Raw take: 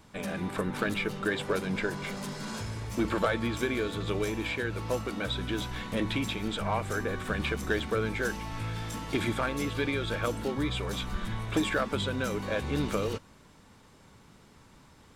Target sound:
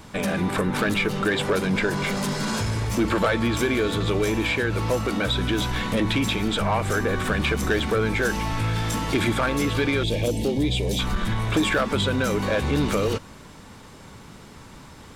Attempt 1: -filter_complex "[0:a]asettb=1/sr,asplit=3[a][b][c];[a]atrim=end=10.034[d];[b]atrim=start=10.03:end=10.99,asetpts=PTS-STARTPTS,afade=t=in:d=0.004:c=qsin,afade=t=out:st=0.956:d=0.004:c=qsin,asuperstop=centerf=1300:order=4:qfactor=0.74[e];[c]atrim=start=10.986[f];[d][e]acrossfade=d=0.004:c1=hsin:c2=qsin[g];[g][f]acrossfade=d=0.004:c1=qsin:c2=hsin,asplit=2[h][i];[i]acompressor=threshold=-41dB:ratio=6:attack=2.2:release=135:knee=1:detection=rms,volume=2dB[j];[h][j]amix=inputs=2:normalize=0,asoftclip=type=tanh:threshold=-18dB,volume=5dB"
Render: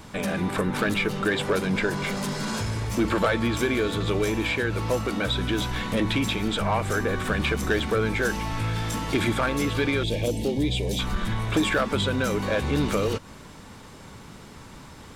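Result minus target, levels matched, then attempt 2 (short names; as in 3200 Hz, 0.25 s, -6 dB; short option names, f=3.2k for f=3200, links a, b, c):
compressor: peak gain reduction +7.5 dB
-filter_complex "[0:a]asettb=1/sr,asplit=3[a][b][c];[a]atrim=end=10.034[d];[b]atrim=start=10.03:end=10.99,asetpts=PTS-STARTPTS,afade=t=in:d=0.004:c=qsin,afade=t=out:st=0.956:d=0.004:c=qsin,asuperstop=centerf=1300:order=4:qfactor=0.74[e];[c]atrim=start=10.986[f];[d][e]acrossfade=d=0.004:c1=hsin:c2=qsin[g];[g][f]acrossfade=d=0.004:c1=qsin:c2=hsin,asplit=2[h][i];[i]acompressor=threshold=-32dB:ratio=6:attack=2.2:release=135:knee=1:detection=rms,volume=2dB[j];[h][j]amix=inputs=2:normalize=0,asoftclip=type=tanh:threshold=-18dB,volume=5dB"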